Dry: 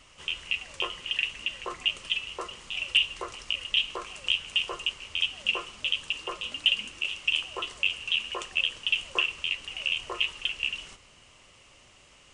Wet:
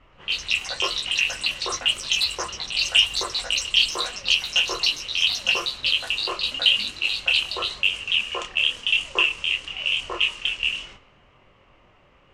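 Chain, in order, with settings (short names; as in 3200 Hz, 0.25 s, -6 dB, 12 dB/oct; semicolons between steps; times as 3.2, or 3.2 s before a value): chorus voices 2, 0.94 Hz, delay 25 ms, depth 4.7 ms; in parallel at -11 dB: crossover distortion -50 dBFS; on the sum: echoes that change speed 0.123 s, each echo +6 st, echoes 3, each echo -6 dB; low-pass opened by the level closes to 1500 Hz, open at -27 dBFS; gain +7 dB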